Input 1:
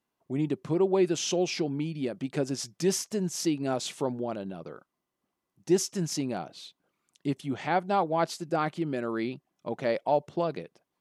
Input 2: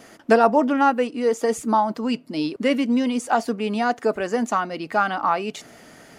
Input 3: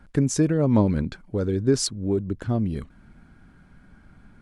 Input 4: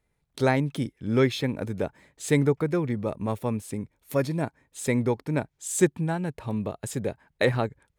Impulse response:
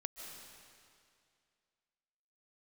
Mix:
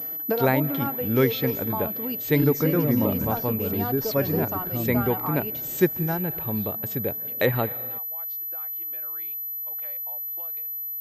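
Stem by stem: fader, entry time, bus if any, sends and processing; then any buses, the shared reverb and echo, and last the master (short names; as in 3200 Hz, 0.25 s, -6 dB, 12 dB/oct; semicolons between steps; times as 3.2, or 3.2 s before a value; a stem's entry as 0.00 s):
-8.5 dB, 0.00 s, no send, HPF 930 Hz 12 dB/oct; compressor 5:1, threshold -38 dBFS, peak gain reduction 12 dB
+2.5 dB, 0.00 s, no send, bell 2000 Hz -7 dB 2.2 oct; comb 6.5 ms, depth 36%; compressor 3:1, threshold -22 dBFS, peak gain reduction 8 dB; auto duck -8 dB, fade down 0.55 s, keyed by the fourth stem
-8.0 dB, 2.25 s, send -8 dB, dry
-1.0 dB, 0.00 s, send -9.5 dB, dry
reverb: on, RT60 2.3 s, pre-delay 0.11 s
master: pulse-width modulation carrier 12000 Hz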